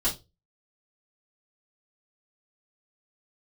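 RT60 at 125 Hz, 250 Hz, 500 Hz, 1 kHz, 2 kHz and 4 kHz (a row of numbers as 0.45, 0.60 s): 0.40, 0.25, 0.30, 0.20, 0.20, 0.20 s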